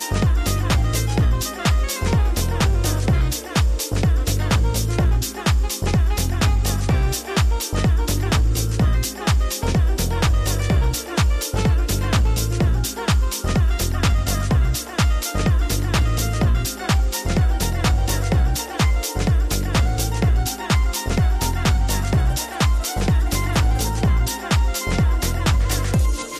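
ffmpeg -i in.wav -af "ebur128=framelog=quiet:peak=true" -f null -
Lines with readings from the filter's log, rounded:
Integrated loudness:
  I:         -20.5 LUFS
  Threshold: -30.5 LUFS
Loudness range:
  LRA:         0.4 LU
  Threshold: -40.5 LUFS
  LRA low:   -20.7 LUFS
  LRA high:  -20.3 LUFS
True peak:
  Peak:       -8.8 dBFS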